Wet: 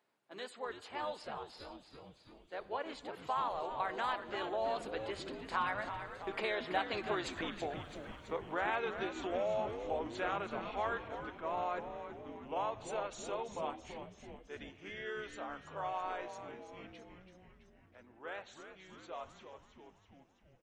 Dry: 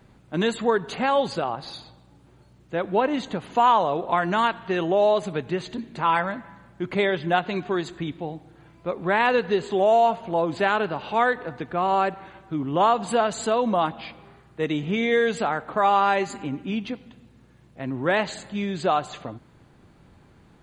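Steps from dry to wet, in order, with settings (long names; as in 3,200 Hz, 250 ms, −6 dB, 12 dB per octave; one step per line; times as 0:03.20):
source passing by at 0:07.33, 27 m/s, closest 8.6 metres
pitch-shifted copies added −3 semitones −7 dB
downward compressor 6 to 1, threshold −39 dBFS, peak gain reduction 16.5 dB
high-pass filter 500 Hz 12 dB per octave
echo with shifted repeats 331 ms, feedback 62%, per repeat −140 Hz, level −9 dB
level +8.5 dB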